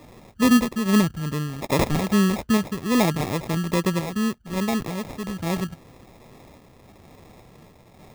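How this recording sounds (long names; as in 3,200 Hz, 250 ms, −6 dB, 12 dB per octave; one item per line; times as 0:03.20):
sample-and-hold tremolo
phaser sweep stages 2, 2.4 Hz, lowest notch 500–1,900 Hz
aliases and images of a low sample rate 1,500 Hz, jitter 0%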